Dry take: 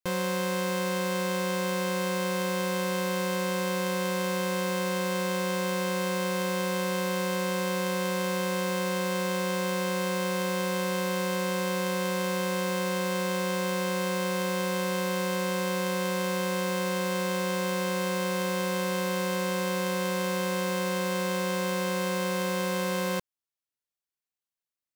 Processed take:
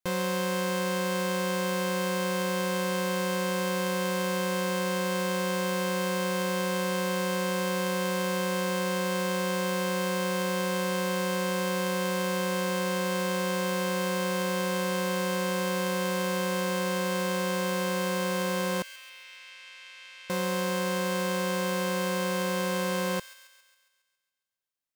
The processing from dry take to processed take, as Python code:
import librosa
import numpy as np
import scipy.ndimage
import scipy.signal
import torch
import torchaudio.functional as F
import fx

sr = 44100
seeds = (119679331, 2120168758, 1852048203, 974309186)

y = fx.ladder_bandpass(x, sr, hz=2900.0, resonance_pct=40, at=(18.82, 20.3))
y = fx.echo_wet_highpass(y, sr, ms=137, feedback_pct=56, hz=1900.0, wet_db=-12)